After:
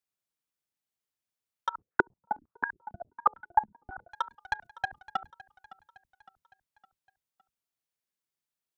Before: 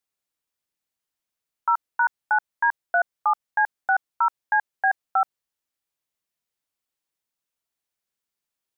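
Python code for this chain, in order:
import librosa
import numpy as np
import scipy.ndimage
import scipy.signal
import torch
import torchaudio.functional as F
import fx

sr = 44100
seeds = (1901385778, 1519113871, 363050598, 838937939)

y = fx.octave_divider(x, sr, octaves=1, level_db=-4.0)
y = fx.highpass(y, sr, hz=98.0, slope=6)
y = fx.low_shelf(y, sr, hz=200.0, db=3.5)
y = fx.over_compress(y, sr, threshold_db=-27.0, ratio=-0.5)
y = fx.transient(y, sr, attack_db=8, sustain_db=-9)
y = fx.level_steps(y, sr, step_db=23)
y = 10.0 ** (-20.0 / 20.0) * np.tanh(y / 10.0 ** (-20.0 / 20.0))
y = fx.echo_feedback(y, sr, ms=561, feedback_pct=50, wet_db=-19.0)
y = fx.filter_held_lowpass(y, sr, hz=11.0, low_hz=210.0, high_hz=1600.0, at=(1.72, 4.1), fade=0.02)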